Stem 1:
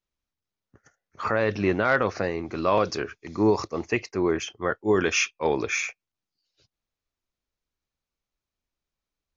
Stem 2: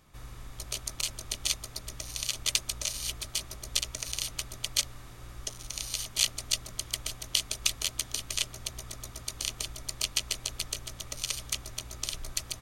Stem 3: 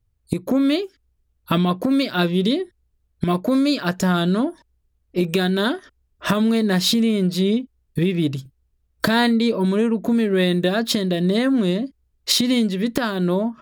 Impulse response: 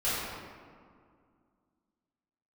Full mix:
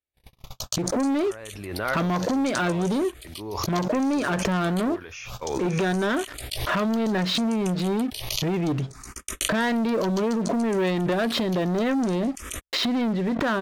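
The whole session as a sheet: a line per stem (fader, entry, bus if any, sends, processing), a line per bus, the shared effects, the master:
−17.0 dB, 0.00 s, no send, parametric band 82 Hz +12 dB 0.89 octaves
−9.5 dB, 0.00 s, no send, frequency shifter mixed with the dry sound +0.63 Hz
−2.0 dB, 0.45 s, no send, low-pass filter 1,900 Hz 12 dB per octave; leveller curve on the samples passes 3; brickwall limiter −15 dBFS, peak gain reduction 8.5 dB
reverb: not used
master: noise gate −50 dBFS, range −59 dB; low-shelf EQ 290 Hz −6.5 dB; background raised ahead of every attack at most 39 dB per second

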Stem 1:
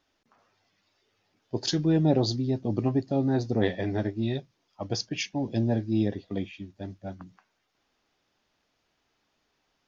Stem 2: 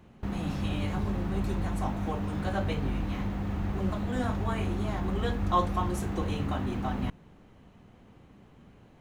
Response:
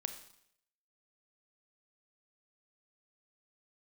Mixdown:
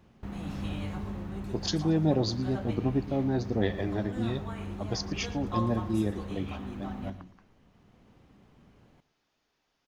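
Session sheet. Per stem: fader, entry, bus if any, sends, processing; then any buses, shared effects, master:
−3.0 dB, 0.00 s, no send, echo send −18.5 dB, no processing
−8.0 dB, 0.00 s, send −4 dB, echo send −13.5 dB, automatic ducking −9 dB, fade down 0.85 s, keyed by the first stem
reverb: on, RT60 0.70 s, pre-delay 28 ms
echo: repeating echo 115 ms, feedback 31%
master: no processing

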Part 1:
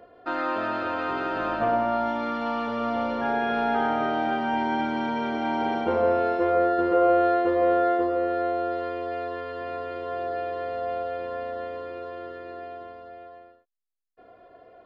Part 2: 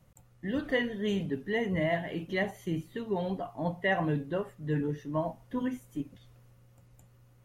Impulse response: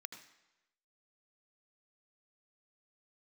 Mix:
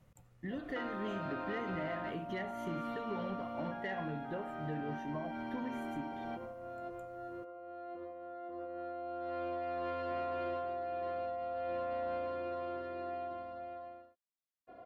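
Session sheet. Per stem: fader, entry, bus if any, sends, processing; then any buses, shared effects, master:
−7.0 dB, 0.50 s, no send, compressor whose output falls as the input rises −33 dBFS, ratio −1; notch comb filter 440 Hz
−3.0 dB, 0.00 s, send −5.5 dB, downward compressor 6 to 1, threshold −35 dBFS, peak gain reduction 11.5 dB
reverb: on, RT60 1.0 s, pre-delay 74 ms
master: soft clipping −29 dBFS, distortion −22 dB; high-shelf EQ 4,200 Hz −6.5 dB

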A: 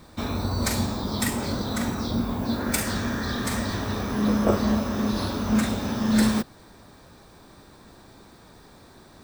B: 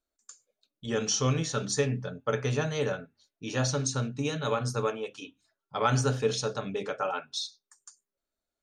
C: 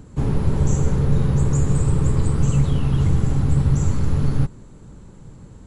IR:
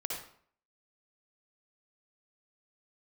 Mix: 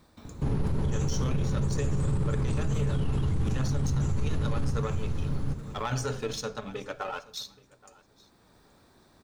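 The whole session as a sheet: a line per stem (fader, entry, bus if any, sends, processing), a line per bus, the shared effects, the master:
−10.0 dB, 0.00 s, no send, no echo send, downward compressor 4 to 1, threshold −35 dBFS, peak gain reduction 16 dB; automatic ducking −7 dB, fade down 0.40 s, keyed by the second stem
+1.0 dB, 0.00 s, send −17.5 dB, echo send −22.5 dB, power curve on the samples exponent 1.4; phase shifter 0.53 Hz, delay 4.8 ms, feedback 34%
−1.0 dB, 0.25 s, no send, echo send −9.5 dB, parametric band 7,700 Hz −8 dB 0.21 octaves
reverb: on, RT60 0.55 s, pre-delay 52 ms
echo: repeating echo 826 ms, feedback 18%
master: brickwall limiter −20 dBFS, peak gain reduction 13 dB

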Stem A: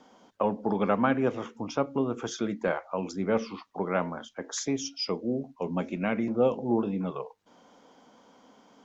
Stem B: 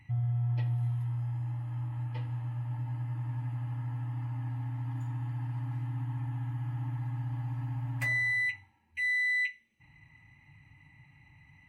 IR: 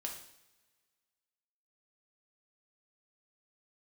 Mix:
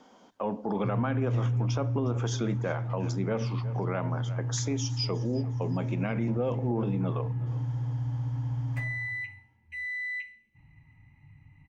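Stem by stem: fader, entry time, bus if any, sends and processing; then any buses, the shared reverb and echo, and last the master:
−0.5 dB, 0.00 s, send −15.5 dB, echo send −19.5 dB, no processing
−6.5 dB, 0.75 s, send −5.5 dB, no echo send, spectral tilt −2.5 dB per octave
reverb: on, pre-delay 3 ms
echo: repeating echo 360 ms, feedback 39%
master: brickwall limiter −20.5 dBFS, peak gain reduction 10 dB

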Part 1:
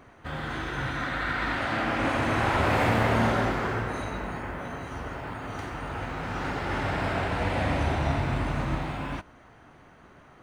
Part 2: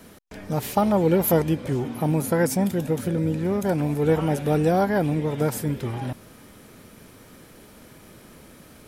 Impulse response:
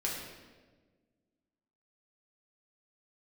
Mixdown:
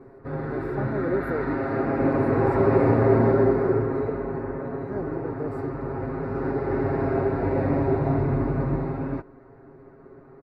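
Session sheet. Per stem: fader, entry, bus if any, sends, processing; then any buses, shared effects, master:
−5.0 dB, 0.00 s, no send, low-shelf EQ 460 Hz +5.5 dB; comb filter 7.4 ms, depth 92%
−15.5 dB, 0.00 s, muted 0:04.10–0:04.88, no send, pitch vibrato 1.2 Hz 92 cents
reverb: not used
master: moving average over 14 samples; parametric band 390 Hz +13 dB 0.68 octaves

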